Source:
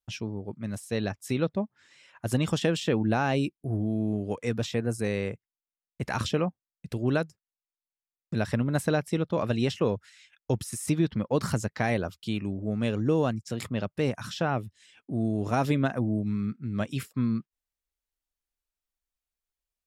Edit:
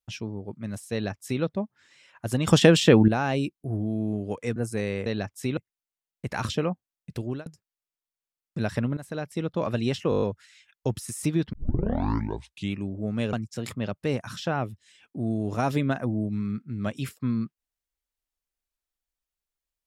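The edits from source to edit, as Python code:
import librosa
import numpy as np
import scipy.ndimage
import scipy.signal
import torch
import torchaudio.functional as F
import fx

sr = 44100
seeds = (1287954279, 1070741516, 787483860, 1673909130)

y = fx.edit(x, sr, fx.duplicate(start_s=0.92, length_s=0.51, to_s=5.33),
    fx.clip_gain(start_s=2.47, length_s=0.61, db=9.5),
    fx.cut(start_s=4.56, length_s=0.27),
    fx.fade_out_span(start_s=6.96, length_s=0.26),
    fx.fade_in_from(start_s=8.73, length_s=0.59, floor_db=-17.5),
    fx.stutter(start_s=9.86, slice_s=0.02, count=7),
    fx.tape_start(start_s=11.17, length_s=1.25),
    fx.cut(start_s=12.97, length_s=0.3), tone=tone)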